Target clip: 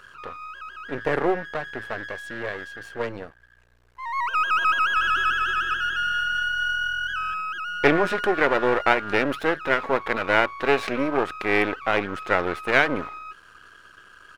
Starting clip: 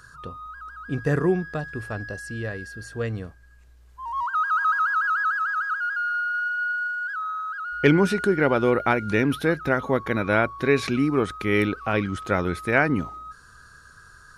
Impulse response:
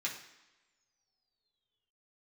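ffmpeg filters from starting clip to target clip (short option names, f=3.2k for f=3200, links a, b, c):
-filter_complex "[0:a]aeval=exprs='max(val(0),0)':c=same,bass=f=250:g=-13,treble=f=4k:g=-11,asplit=3[a][b][c];[a]afade=t=out:st=4.95:d=0.02[d];[b]asplit=7[e][f][g][h][i][j][k];[f]adelay=233,afreqshift=43,volume=-11.5dB[l];[g]adelay=466,afreqshift=86,volume=-17.2dB[m];[h]adelay=699,afreqshift=129,volume=-22.9dB[n];[i]adelay=932,afreqshift=172,volume=-28.5dB[o];[j]adelay=1165,afreqshift=215,volume=-34.2dB[p];[k]adelay=1398,afreqshift=258,volume=-39.9dB[q];[e][l][m][n][o][p][q]amix=inputs=7:normalize=0,afade=t=in:st=4.95:d=0.02,afade=t=out:st=7.33:d=0.02[r];[c]afade=t=in:st=7.33:d=0.02[s];[d][r][s]amix=inputs=3:normalize=0,volume=6.5dB"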